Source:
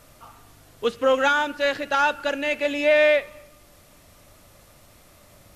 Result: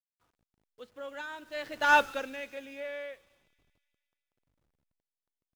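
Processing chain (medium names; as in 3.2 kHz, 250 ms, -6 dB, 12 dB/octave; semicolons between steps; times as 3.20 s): send-on-delta sampling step -40.5 dBFS; Doppler pass-by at 1.96 s, 18 m/s, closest 1.3 m; feedback echo behind a high-pass 148 ms, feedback 66%, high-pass 4.5 kHz, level -14 dB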